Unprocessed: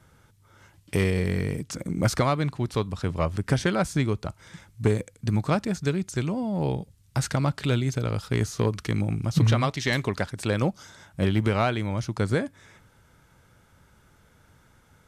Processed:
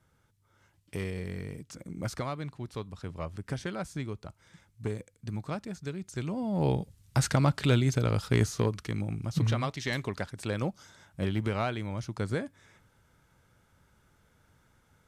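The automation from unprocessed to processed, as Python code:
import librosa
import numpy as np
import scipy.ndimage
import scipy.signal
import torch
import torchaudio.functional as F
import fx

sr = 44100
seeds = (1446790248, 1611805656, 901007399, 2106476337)

y = fx.gain(x, sr, db=fx.line((5.94, -11.5), (6.69, 0.0), (8.42, 0.0), (8.86, -7.0)))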